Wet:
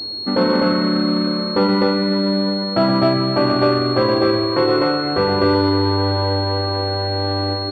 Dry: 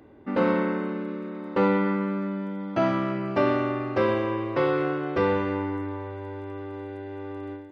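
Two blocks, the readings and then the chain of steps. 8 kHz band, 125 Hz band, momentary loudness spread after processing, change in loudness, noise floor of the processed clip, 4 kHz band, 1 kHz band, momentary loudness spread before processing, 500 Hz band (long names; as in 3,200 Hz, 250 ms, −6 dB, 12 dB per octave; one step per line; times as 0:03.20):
can't be measured, +11.5 dB, 4 LU, +9.5 dB, −23 dBFS, +25.5 dB, +8.5 dB, 13 LU, +8.5 dB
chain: hum removal 72.67 Hz, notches 2
reverb reduction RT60 0.68 s
in parallel at 0 dB: brickwall limiter −22.5 dBFS, peak gain reduction 11 dB
on the sum: speech leveller within 5 dB 0.5 s
on a send: loudspeakers that aren't time-aligned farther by 42 metres −8 dB, 87 metres −1 dB
on the sum: switching amplifier with a slow clock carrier 4,300 Hz
level +5 dB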